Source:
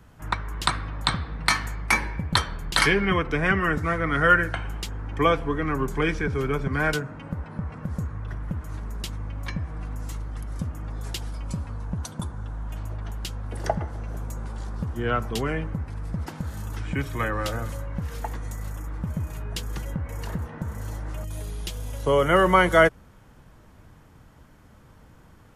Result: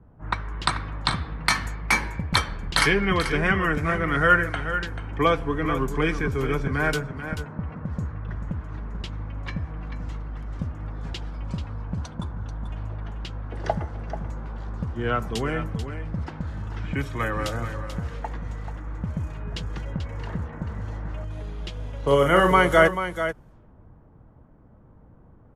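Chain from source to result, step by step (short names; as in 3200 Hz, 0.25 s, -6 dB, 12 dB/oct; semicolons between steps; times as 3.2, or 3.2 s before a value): low-pass opened by the level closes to 720 Hz, open at -22 dBFS; 21.99–22.52 doubler 43 ms -5 dB; echo 0.437 s -10 dB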